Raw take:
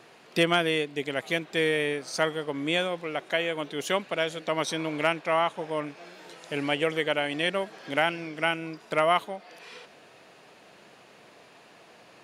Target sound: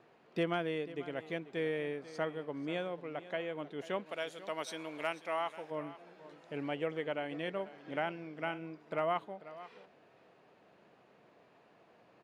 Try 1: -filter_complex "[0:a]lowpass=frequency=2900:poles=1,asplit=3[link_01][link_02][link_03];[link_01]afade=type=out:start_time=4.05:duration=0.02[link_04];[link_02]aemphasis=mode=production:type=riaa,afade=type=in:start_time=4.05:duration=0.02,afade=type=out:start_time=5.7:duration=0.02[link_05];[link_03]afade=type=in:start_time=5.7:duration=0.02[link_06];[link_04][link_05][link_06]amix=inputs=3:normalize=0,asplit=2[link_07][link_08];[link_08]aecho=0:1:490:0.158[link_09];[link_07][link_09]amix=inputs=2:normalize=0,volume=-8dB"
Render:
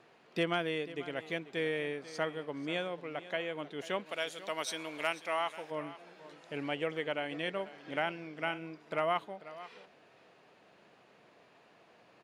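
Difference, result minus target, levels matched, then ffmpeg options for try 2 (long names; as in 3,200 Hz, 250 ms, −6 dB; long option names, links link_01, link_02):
4,000 Hz band +4.5 dB
-filter_complex "[0:a]lowpass=frequency=1100:poles=1,asplit=3[link_01][link_02][link_03];[link_01]afade=type=out:start_time=4.05:duration=0.02[link_04];[link_02]aemphasis=mode=production:type=riaa,afade=type=in:start_time=4.05:duration=0.02,afade=type=out:start_time=5.7:duration=0.02[link_05];[link_03]afade=type=in:start_time=5.7:duration=0.02[link_06];[link_04][link_05][link_06]amix=inputs=3:normalize=0,asplit=2[link_07][link_08];[link_08]aecho=0:1:490:0.158[link_09];[link_07][link_09]amix=inputs=2:normalize=0,volume=-8dB"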